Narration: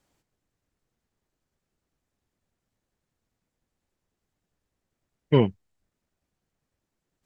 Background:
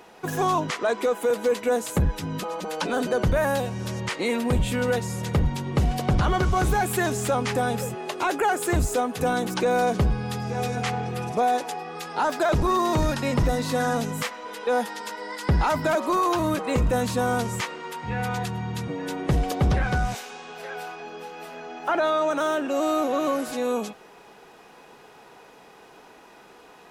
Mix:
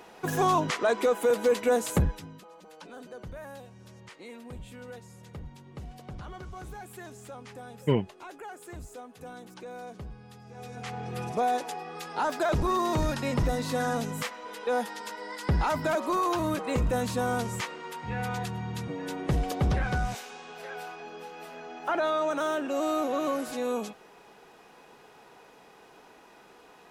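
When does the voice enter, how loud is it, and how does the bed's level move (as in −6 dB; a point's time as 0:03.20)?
2.55 s, −5.5 dB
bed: 0:01.98 −1 dB
0:02.41 −20 dB
0:10.44 −20 dB
0:11.19 −4.5 dB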